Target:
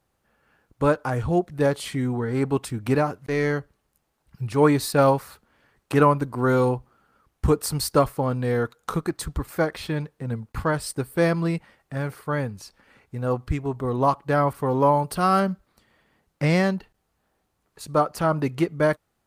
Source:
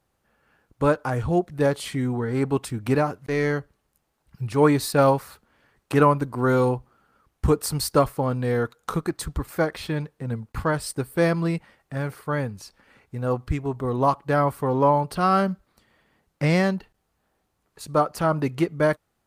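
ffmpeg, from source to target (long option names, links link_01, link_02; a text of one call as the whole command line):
ffmpeg -i in.wav -filter_complex "[0:a]asettb=1/sr,asplit=3[link_01][link_02][link_03];[link_01]atrim=end=14.534[link_04];[link_02]atrim=start=14.53:end=15.4,asetpts=PTS-STARTPTS,afade=type=in:duration=0.004:curve=qsin,afade=type=out:start_time=0.866:duration=0.004:curve=qsin,adynamicequalizer=threshold=0.00501:dfrequency=6500:dqfactor=0.7:tfrequency=6500:tqfactor=0.7:attack=5:release=100:ratio=0.375:range=4:mode=boostabove:tftype=highshelf[link_05];[link_03]atrim=start=15.396[link_06];[link_04][link_05]acrossfade=duration=0.004:curve1=hsin:curve2=qsin[link_07];[link_07][link_06]acrossfade=duration=0.004:curve1=qsin:curve2=hsin" out.wav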